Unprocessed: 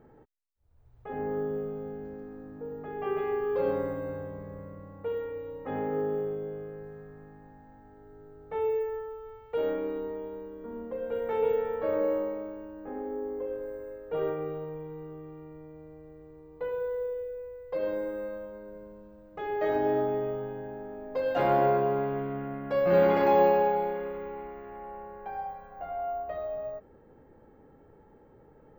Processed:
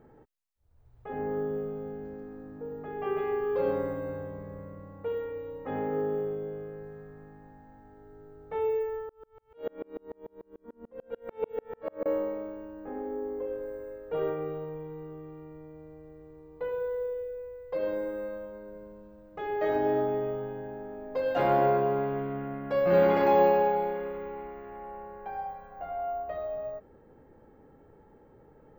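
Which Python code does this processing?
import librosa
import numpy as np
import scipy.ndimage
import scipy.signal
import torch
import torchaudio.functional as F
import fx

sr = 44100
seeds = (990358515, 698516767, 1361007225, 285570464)

y = fx.tremolo_decay(x, sr, direction='swelling', hz=6.8, depth_db=36, at=(9.09, 12.06))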